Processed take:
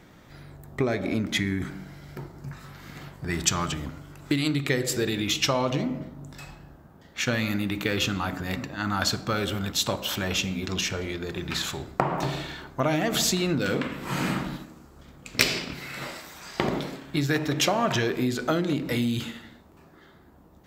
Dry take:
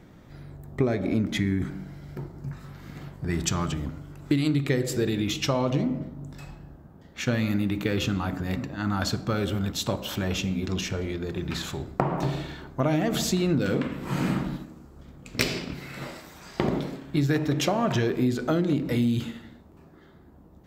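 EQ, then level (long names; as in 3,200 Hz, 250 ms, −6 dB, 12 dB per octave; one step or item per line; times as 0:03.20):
tilt shelving filter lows −4.5 dB, about 640 Hz
+1.0 dB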